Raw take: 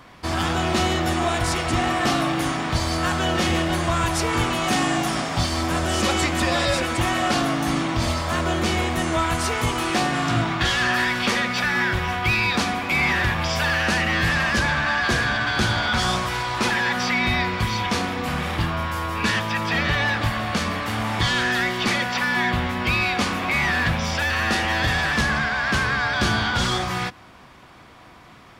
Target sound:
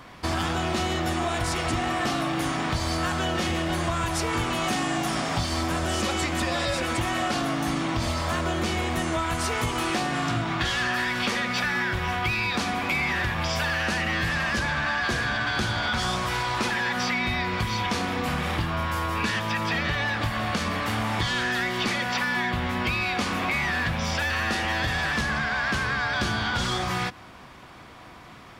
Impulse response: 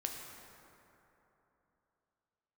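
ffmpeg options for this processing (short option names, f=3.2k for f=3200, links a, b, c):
-af "acompressor=threshold=-24dB:ratio=6,volume=1dB"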